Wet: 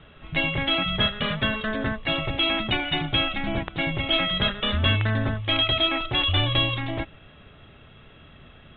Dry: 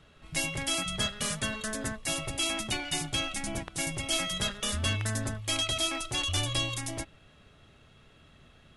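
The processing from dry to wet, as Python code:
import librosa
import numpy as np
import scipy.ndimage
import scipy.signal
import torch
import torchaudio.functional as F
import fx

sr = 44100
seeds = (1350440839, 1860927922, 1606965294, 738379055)

y = scipy.signal.sosfilt(scipy.signal.butter(16, 3700.0, 'lowpass', fs=sr, output='sos'), x)
y = y * 10.0 ** (8.5 / 20.0)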